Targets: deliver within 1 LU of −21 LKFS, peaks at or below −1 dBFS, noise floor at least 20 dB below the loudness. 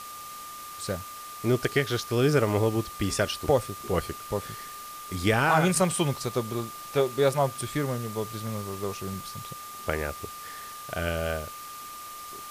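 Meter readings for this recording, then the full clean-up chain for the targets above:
interfering tone 1,200 Hz; level of the tone −40 dBFS; background noise floor −41 dBFS; target noise floor −48 dBFS; integrated loudness −28.0 LKFS; sample peak −9.0 dBFS; target loudness −21.0 LKFS
→ notch filter 1,200 Hz, Q 30
broadband denoise 7 dB, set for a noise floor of −41 dBFS
level +7 dB

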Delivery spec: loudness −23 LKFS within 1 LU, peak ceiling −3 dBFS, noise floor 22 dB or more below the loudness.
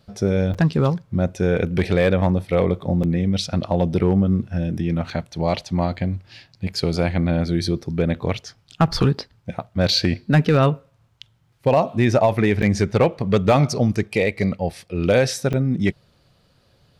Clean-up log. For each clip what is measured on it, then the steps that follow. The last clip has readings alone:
share of clipped samples 0.5%; peaks flattened at −8.5 dBFS; number of dropouts 4; longest dropout 5.9 ms; integrated loudness −20.5 LKFS; sample peak −8.5 dBFS; target loudness −23.0 LKFS
→ clipped peaks rebuilt −8.5 dBFS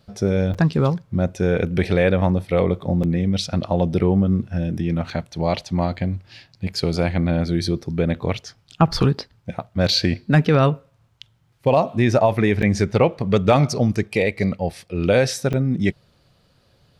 share of clipped samples 0.0%; number of dropouts 4; longest dropout 5.9 ms
→ repair the gap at 0:00.54/0:03.03/0:12.62/0:15.53, 5.9 ms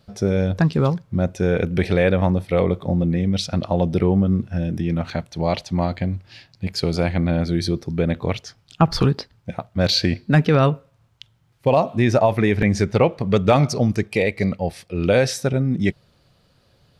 number of dropouts 0; integrated loudness −20.5 LKFS; sample peak −2.0 dBFS; target loudness −23.0 LKFS
→ level −2.5 dB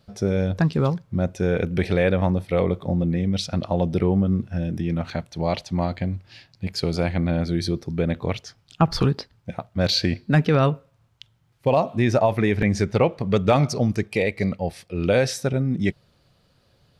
integrated loudness −23.0 LKFS; sample peak −4.5 dBFS; background noise floor −62 dBFS

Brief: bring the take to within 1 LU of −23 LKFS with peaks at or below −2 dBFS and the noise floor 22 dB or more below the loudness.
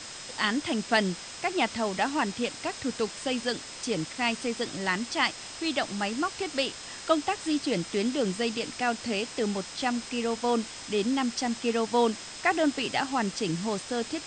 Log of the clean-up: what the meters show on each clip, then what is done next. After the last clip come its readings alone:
interfering tone 5,100 Hz; level of the tone −47 dBFS; background noise floor −42 dBFS; target noise floor −51 dBFS; integrated loudness −29.0 LKFS; sample peak −9.5 dBFS; target loudness −23.0 LKFS
→ notch filter 5,100 Hz, Q 30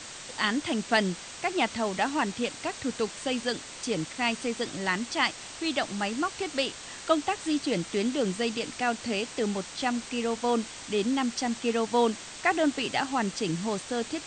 interfering tone none found; background noise floor −43 dBFS; target noise floor −51 dBFS
→ noise reduction from a noise print 8 dB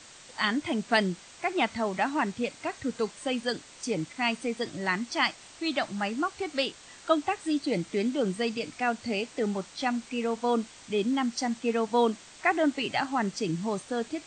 background noise floor −51 dBFS; target noise floor −52 dBFS
→ noise reduction from a noise print 6 dB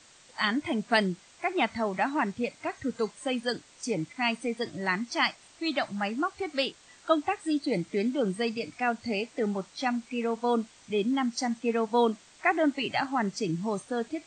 background noise floor −57 dBFS; integrated loudness −29.5 LKFS; sample peak −9.5 dBFS; target loudness −23.0 LKFS
→ level +6.5 dB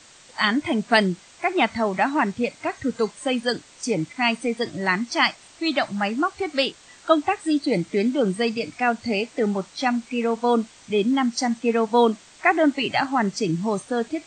integrated loudness −23.0 LKFS; sample peak −3.0 dBFS; background noise floor −50 dBFS

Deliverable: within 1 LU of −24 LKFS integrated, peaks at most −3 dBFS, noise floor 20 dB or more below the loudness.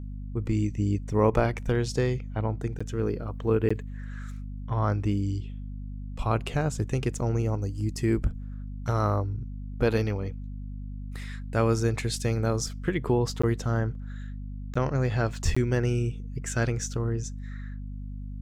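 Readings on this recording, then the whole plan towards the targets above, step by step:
number of dropouts 5; longest dropout 15 ms; mains hum 50 Hz; hum harmonics up to 250 Hz; level of the hum −34 dBFS; integrated loudness −28.5 LKFS; sample peak −10.5 dBFS; target loudness −24.0 LKFS
→ repair the gap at 0:02.79/0:03.69/0:13.42/0:14.74/0:15.55, 15 ms
hum removal 50 Hz, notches 5
level +4.5 dB

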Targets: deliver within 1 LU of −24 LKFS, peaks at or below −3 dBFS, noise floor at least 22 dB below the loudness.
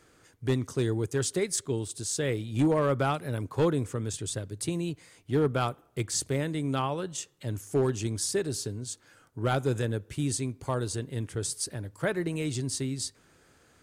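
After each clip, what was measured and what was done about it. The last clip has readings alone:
share of clipped samples 0.3%; peaks flattened at −18.0 dBFS; integrated loudness −30.5 LKFS; sample peak −18.0 dBFS; target loudness −24.0 LKFS
→ clipped peaks rebuilt −18 dBFS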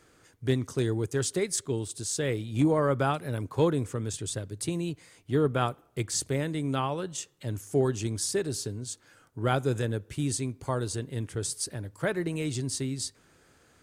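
share of clipped samples 0.0%; integrated loudness −30.0 LKFS; sample peak −11.5 dBFS; target loudness −24.0 LKFS
→ level +6 dB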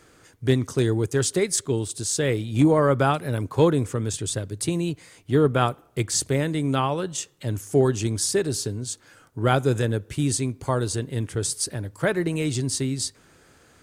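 integrated loudness −24.0 LKFS; sample peak −5.5 dBFS; background noise floor −56 dBFS

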